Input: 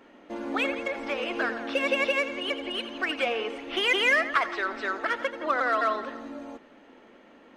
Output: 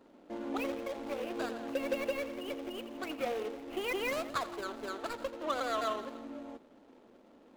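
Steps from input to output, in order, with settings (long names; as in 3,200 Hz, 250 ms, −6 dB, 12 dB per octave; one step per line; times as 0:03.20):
running median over 25 samples
level −4.5 dB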